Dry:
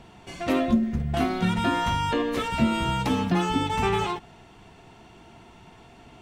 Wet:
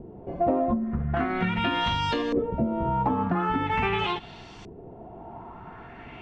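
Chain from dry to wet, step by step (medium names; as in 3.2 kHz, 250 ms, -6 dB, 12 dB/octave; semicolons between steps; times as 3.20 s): compression, threshold -29 dBFS, peak gain reduction 13 dB; LFO low-pass saw up 0.43 Hz 390–6100 Hz; trim +5 dB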